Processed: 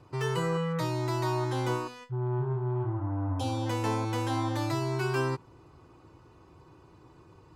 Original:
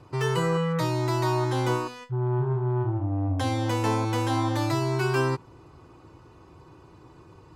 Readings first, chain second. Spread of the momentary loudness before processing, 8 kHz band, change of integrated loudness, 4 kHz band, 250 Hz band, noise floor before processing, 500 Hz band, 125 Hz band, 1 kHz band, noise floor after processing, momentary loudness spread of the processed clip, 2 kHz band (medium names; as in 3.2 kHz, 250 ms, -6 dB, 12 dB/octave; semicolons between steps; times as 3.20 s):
3 LU, -4.5 dB, -4.5 dB, -4.5 dB, -4.5 dB, -52 dBFS, -4.5 dB, -4.5 dB, -4.5 dB, -57 dBFS, 3 LU, -4.5 dB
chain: spectral replace 2.74–3.64 s, 880–2300 Hz before; trim -4.5 dB